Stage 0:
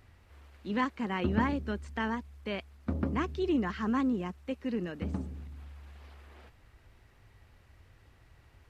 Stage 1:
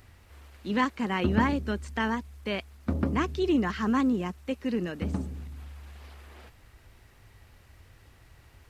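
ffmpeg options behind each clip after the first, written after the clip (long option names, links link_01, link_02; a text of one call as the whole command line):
ffmpeg -i in.wav -af "highshelf=frequency=5200:gain=8,volume=4dB" out.wav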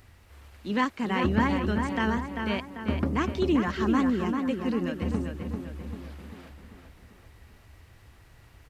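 ffmpeg -i in.wav -filter_complex "[0:a]asplit=2[link_01][link_02];[link_02]adelay=393,lowpass=frequency=3400:poles=1,volume=-5dB,asplit=2[link_03][link_04];[link_04]adelay=393,lowpass=frequency=3400:poles=1,volume=0.52,asplit=2[link_05][link_06];[link_06]adelay=393,lowpass=frequency=3400:poles=1,volume=0.52,asplit=2[link_07][link_08];[link_08]adelay=393,lowpass=frequency=3400:poles=1,volume=0.52,asplit=2[link_09][link_10];[link_10]adelay=393,lowpass=frequency=3400:poles=1,volume=0.52,asplit=2[link_11][link_12];[link_12]adelay=393,lowpass=frequency=3400:poles=1,volume=0.52,asplit=2[link_13][link_14];[link_14]adelay=393,lowpass=frequency=3400:poles=1,volume=0.52[link_15];[link_01][link_03][link_05][link_07][link_09][link_11][link_13][link_15]amix=inputs=8:normalize=0" out.wav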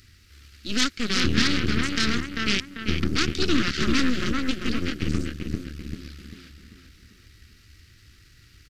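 ffmpeg -i in.wav -af "aeval=exprs='0.266*(cos(1*acos(clip(val(0)/0.266,-1,1)))-cos(1*PI/2))+0.075*(cos(8*acos(clip(val(0)/0.266,-1,1)))-cos(8*PI/2))':channel_layout=same,firequalizer=gain_entry='entry(330,0);entry(620,-19);entry(940,-21);entry(1300,0);entry(3300,6);entry(4700,12);entry(9000,2)':delay=0.05:min_phase=1" out.wav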